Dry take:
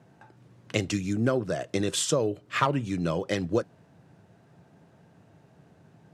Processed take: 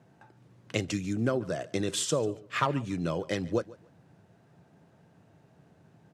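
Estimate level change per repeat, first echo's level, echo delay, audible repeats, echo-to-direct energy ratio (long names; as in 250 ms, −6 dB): −14.5 dB, −20.5 dB, 143 ms, 2, −20.5 dB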